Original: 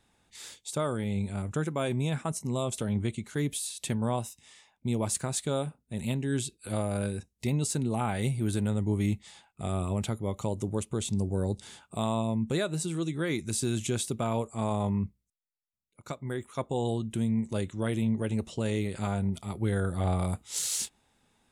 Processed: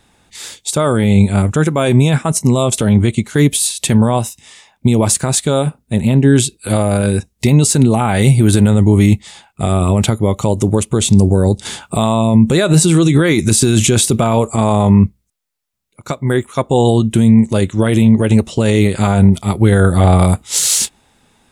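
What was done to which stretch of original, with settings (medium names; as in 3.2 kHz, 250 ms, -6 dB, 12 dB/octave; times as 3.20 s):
5.96–6.36 s: treble shelf 2.5 kHz -11 dB
11.65–14.56 s: gain +6 dB
whole clip: loudness maximiser +23 dB; upward expansion 1.5:1, over -22 dBFS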